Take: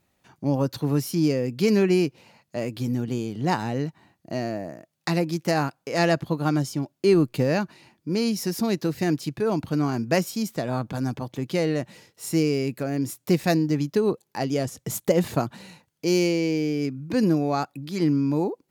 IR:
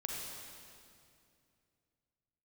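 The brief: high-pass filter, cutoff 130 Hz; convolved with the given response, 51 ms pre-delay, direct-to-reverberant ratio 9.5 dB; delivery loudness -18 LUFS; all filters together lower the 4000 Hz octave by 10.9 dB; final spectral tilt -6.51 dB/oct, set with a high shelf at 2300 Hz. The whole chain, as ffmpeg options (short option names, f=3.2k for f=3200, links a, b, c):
-filter_complex "[0:a]highpass=130,highshelf=f=2.3k:g=-9,equalizer=f=4k:t=o:g=-5.5,asplit=2[a][b];[1:a]atrim=start_sample=2205,adelay=51[c];[b][c]afir=irnorm=-1:irlink=0,volume=-10.5dB[d];[a][d]amix=inputs=2:normalize=0,volume=7.5dB"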